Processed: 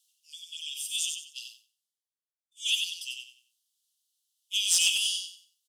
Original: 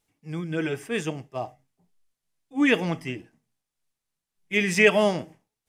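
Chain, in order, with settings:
Butterworth high-pass 2,900 Hz 96 dB per octave
dynamic equaliser 9,800 Hz, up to +6 dB, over −53 dBFS, Q 1.2
harmonic generator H 5 −22 dB, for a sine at −16.5 dBFS
repeating echo 92 ms, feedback 27%, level −5 dB
0:01.31–0:02.57: multiband upward and downward expander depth 100%
level +5.5 dB

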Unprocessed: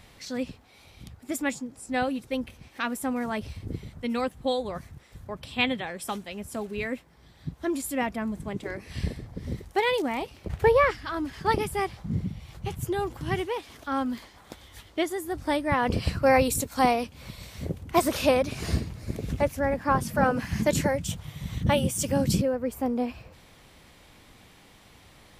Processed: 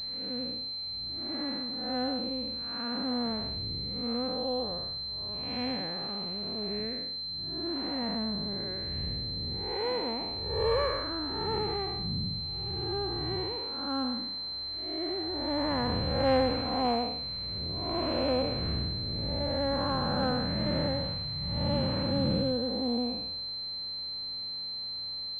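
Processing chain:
spectrum smeared in time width 274 ms
switching amplifier with a slow clock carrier 4,100 Hz

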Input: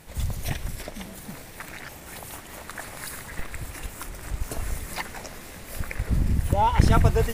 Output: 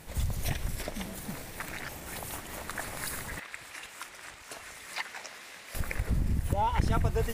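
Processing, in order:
downward compressor 2.5 to 1, threshold −27 dBFS, peak gain reduction 11.5 dB
0:03.39–0:05.75: resonant band-pass 2,700 Hz, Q 0.56

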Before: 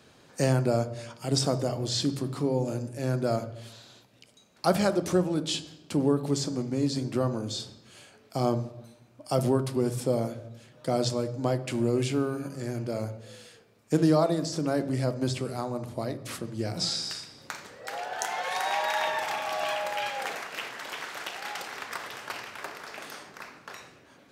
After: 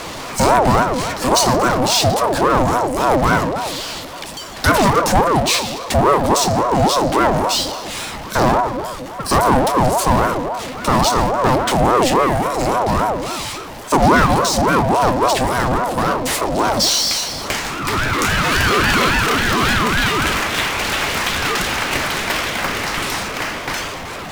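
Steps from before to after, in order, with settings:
power curve on the samples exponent 0.5
ring modulator whose carrier an LFO sweeps 620 Hz, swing 40%, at 3.6 Hz
level +8 dB

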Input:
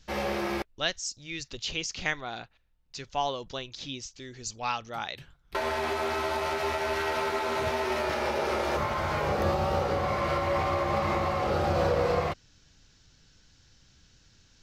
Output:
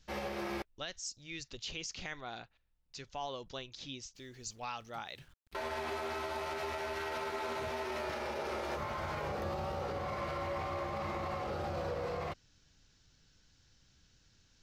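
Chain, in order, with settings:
0:04.15–0:05.56: centre clipping without the shift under −57 dBFS
brickwall limiter −22.5 dBFS, peak gain reduction 9.5 dB
level −7 dB

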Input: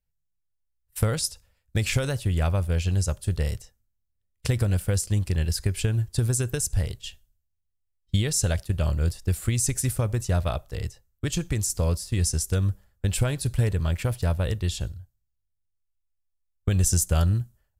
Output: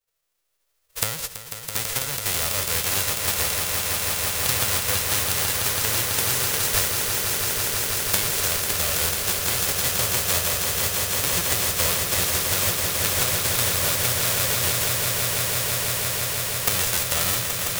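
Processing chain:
spectral envelope flattened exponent 0.1
camcorder AGC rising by 6.9 dB per second
on a send: echo that builds up and dies away 165 ms, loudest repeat 8, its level −7.5 dB
on the sum: level −4.5 dB

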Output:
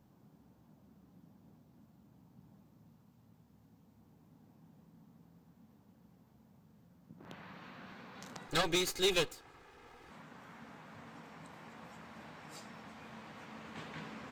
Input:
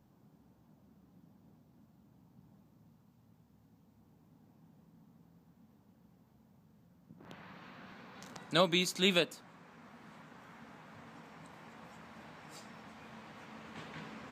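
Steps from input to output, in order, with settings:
0:08.48–0:10.10: lower of the sound and its delayed copy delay 2.4 ms
level +1 dB

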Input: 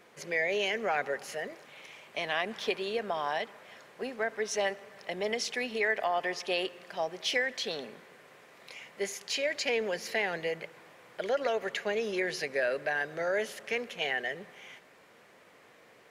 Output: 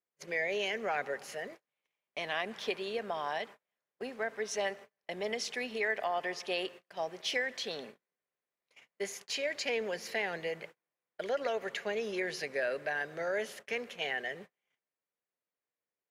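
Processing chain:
noise gate −44 dBFS, range −36 dB
level −3.5 dB

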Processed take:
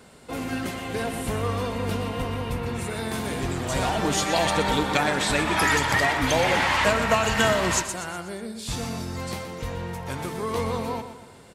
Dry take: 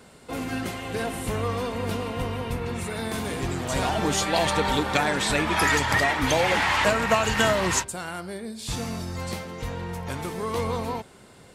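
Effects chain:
repeating echo 122 ms, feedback 48%, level −10.5 dB

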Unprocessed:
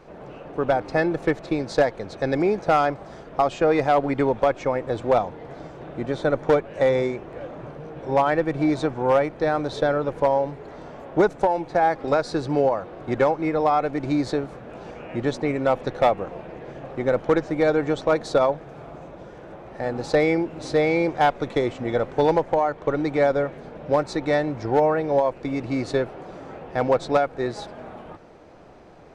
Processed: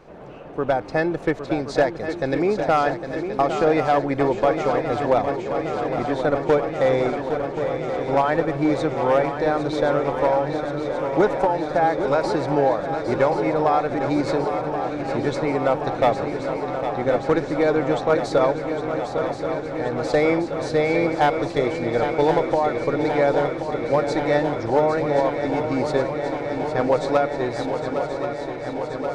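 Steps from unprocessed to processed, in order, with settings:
feedback echo with a long and a short gap by turns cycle 1,078 ms, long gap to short 3 to 1, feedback 77%, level −9 dB

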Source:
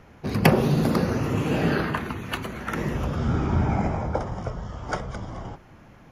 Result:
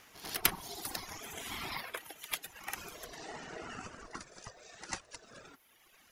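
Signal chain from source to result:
first-order pre-emphasis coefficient 0.97
backwards echo 96 ms −13 dB
in parallel at +3 dB: downward compressor, threshold −58 dBFS, peak gain reduction 30.5 dB
on the sum: ring modulation 550 Hz
reverb reduction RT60 1.8 s
level +5 dB

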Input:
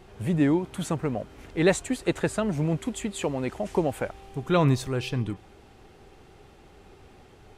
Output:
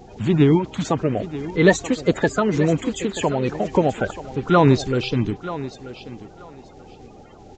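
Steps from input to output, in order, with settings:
spectral magnitudes quantised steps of 30 dB
downsampling to 16,000 Hz
feedback echo with a high-pass in the loop 933 ms, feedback 20%, high-pass 150 Hz, level −13.5 dB
level +7.5 dB

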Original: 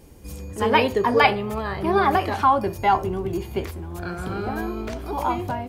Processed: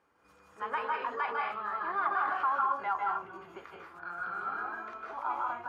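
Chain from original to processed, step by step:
convolution reverb, pre-delay 148 ms, DRR −1.5 dB
brickwall limiter −11 dBFS, peak gain reduction 8 dB
resonant band-pass 1,300 Hz, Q 4
level −2 dB

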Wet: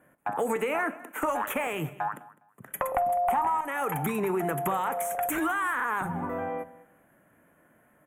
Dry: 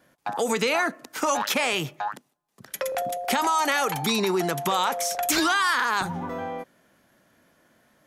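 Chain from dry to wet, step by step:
0:00.56–0:01.67: high-pass filter 220 Hz 24 dB per octave
0:02.80–0:03.61: flat-topped bell 910 Hz +14 dB 1 octave
downward compressor 10 to 1, threshold −23 dBFS, peak gain reduction 15 dB
asymmetric clip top −22 dBFS
Butterworth band-reject 4,700 Hz, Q 0.67
repeating echo 205 ms, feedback 22%, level −20 dB
rectangular room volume 490 cubic metres, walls furnished, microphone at 0.4 metres

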